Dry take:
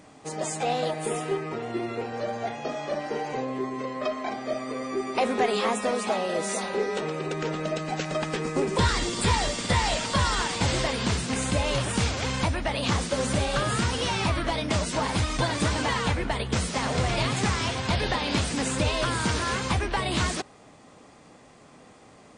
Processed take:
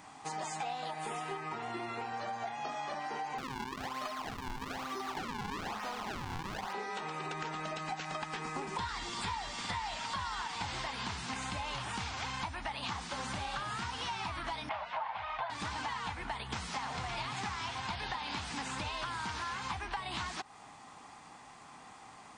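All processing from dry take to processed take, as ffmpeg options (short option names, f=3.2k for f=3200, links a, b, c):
-filter_complex "[0:a]asettb=1/sr,asplit=3[a][b][c];[a]atrim=end=3.384[d];[b]atrim=start=3.38:end=6.73,asetpts=PTS-STARTPTS,afade=t=in:d=0.004:c=qsin,afade=t=out:st=3.346:d=0.004:c=qsin,acrusher=samples=40:mix=1:aa=0.000001:lfo=1:lforange=64:lforate=1.1,asoftclip=type=hard:threshold=-25dB[e];[c]atrim=start=6.726[f];[d][e]acrossfade=d=0.004:c1=hsin:c2=qsin[g];[g][f]acrossfade=d=0.004:c1=qsin:c2=hsin,asettb=1/sr,asplit=3[h][i][j];[h]atrim=end=14.694[k];[i]atrim=start=14.69:end=15.5,asetpts=PTS-STARTPTS,afade=t=in:d=0.004:c=qsin,afade=t=out:st=0.806:d=0.004:c=qsin,lowpass=f=3k:w=0.5412,lowpass=f=3k:w=1.3066,lowshelf=f=450:t=q:w=3:g=-12[l];[j]atrim=start=15.496[m];[k][l]acrossfade=d=0.004:c1=hsin:c2=qsin[n];[n][m]acrossfade=d=0.004:c1=qsin:c2=hsin,acrossover=split=6600[o][p];[p]acompressor=threshold=-52dB:ratio=4:attack=1:release=60[q];[o][q]amix=inputs=2:normalize=0,lowshelf=f=680:t=q:w=3:g=-6.5,acompressor=threshold=-36dB:ratio=6"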